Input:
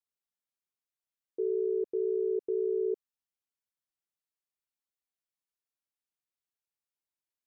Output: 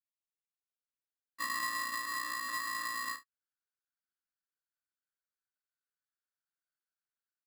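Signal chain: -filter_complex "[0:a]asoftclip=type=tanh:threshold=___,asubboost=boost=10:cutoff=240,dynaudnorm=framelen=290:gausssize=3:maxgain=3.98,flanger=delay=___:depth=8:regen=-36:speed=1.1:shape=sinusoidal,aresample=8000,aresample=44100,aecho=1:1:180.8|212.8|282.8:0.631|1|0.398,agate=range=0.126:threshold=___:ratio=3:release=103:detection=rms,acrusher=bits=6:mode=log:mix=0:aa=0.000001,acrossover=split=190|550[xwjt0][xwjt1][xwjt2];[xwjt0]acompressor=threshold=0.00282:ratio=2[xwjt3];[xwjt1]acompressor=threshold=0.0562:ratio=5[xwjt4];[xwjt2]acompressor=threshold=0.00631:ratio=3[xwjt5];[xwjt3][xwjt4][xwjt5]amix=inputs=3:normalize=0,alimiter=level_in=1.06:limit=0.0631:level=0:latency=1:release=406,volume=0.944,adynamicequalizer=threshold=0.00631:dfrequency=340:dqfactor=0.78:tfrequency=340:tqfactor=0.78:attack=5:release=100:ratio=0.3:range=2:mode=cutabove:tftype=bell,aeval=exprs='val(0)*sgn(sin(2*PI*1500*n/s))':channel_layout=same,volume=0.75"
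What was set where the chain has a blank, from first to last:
0.015, 2.3, 0.0447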